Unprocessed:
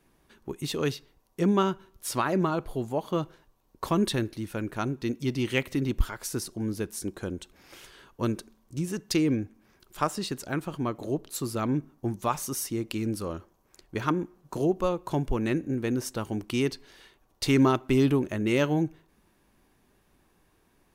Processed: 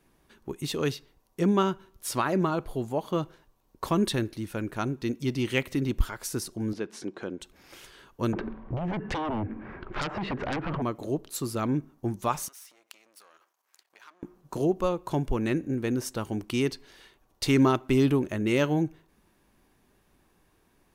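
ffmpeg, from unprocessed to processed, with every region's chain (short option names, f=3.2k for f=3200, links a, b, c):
-filter_complex "[0:a]asettb=1/sr,asplit=3[a][b][c];[a]atrim=end=6.734[d];[b]atrim=start=6.73:end=7.41,asetpts=PTS-STARTPTS,afade=t=in:d=0.004:c=qsin,afade=t=out:st=0.676:d=0.004:c=qsin,highpass=220,lowpass=3.6k,acompressor=mode=upward:threshold=-35dB:ratio=2.5:attack=3.2:release=140:knee=2.83:detection=peak[e];[c]atrim=start=7.406[f];[d][e]acrossfade=d=0.004:c1=hsin:c2=qsin[g];[g][f]acrossfade=d=0.004:c1=qsin:c2=hsin,asettb=1/sr,asplit=3[h][i][j];[h]atrim=end=8.334[k];[i]atrim=start=8.33:end=10.82,asetpts=PTS-STARTPTS,afade=t=in:d=0.004:c=qsin,afade=t=out:st=2.486:d=0.004:c=qsin,lowpass=f=2.1k:w=0.5412,lowpass=f=2.1k:w=1.3066,acompressor=threshold=-43dB:ratio=4:attack=3.2:release=140:knee=1:detection=peak,aeval=exprs='0.0473*sin(PI/2*7.08*val(0)/0.0473)':c=same[l];[j]atrim=start=10.816[m];[k][l]acrossfade=d=0.004:c1=hsin:c2=qsin[n];[n][m]acrossfade=d=0.004:c1=qsin:c2=hsin,asettb=1/sr,asplit=3[o][p][q];[o]atrim=end=12.484[r];[p]atrim=start=12.48:end=14.23,asetpts=PTS-STARTPTS,afade=t=in:d=0.004:c=qsin,afade=t=out:st=1.746:d=0.004:c=qsin,aeval=exprs='if(lt(val(0),0),0.251*val(0),val(0))':c=same,acompressor=threshold=-42dB:ratio=10:attack=3.2:release=140:knee=1:detection=peak,highpass=1k[s];[q]atrim=start=14.226[t];[r][s]acrossfade=d=0.004:c1=hsin:c2=qsin[u];[u][t]acrossfade=d=0.004:c1=qsin:c2=hsin"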